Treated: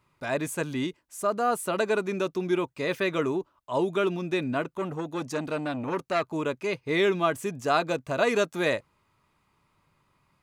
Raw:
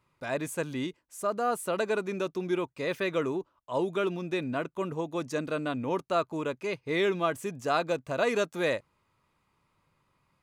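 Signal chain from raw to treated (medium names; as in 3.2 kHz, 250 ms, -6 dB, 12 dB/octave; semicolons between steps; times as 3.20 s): band-stop 510 Hz, Q 12; 4.62–6.30 s: transformer saturation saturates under 1.3 kHz; trim +3.5 dB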